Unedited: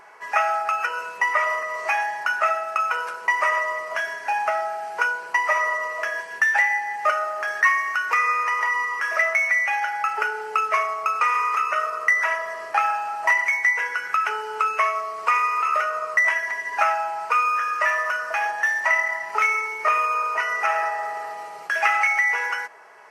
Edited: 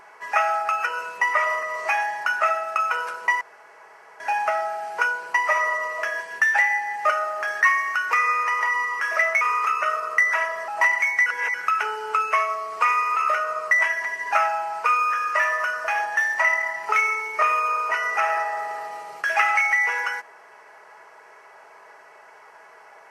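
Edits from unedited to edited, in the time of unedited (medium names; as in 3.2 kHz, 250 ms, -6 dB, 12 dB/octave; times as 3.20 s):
3.41–4.20 s: room tone
9.41–11.31 s: delete
12.58–13.14 s: delete
13.72–14.00 s: reverse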